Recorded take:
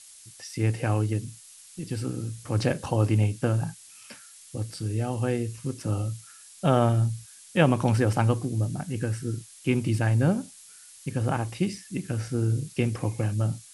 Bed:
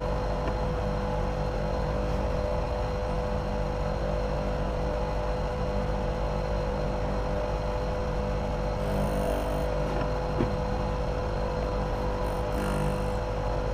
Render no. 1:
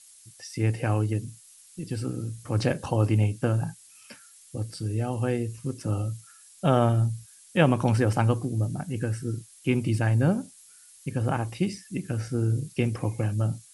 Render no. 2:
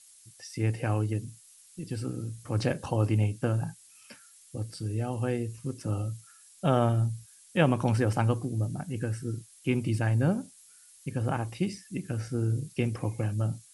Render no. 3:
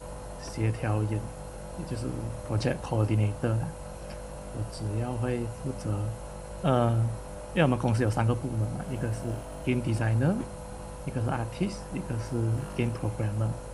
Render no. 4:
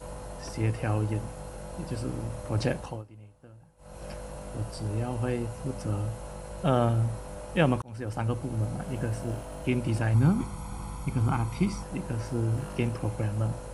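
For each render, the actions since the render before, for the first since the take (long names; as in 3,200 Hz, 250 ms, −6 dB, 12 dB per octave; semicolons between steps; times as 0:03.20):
broadband denoise 6 dB, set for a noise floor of −50 dBFS
level −3 dB
mix in bed −11.5 dB
0:02.76–0:04.05: duck −24 dB, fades 0.28 s; 0:07.82–0:08.78: fade in equal-power; 0:10.14–0:11.83: comb filter 0.9 ms, depth 72%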